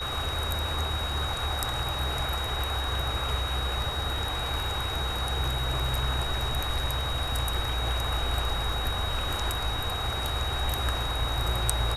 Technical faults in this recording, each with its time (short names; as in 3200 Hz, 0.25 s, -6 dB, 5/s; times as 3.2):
tone 3800 Hz -33 dBFS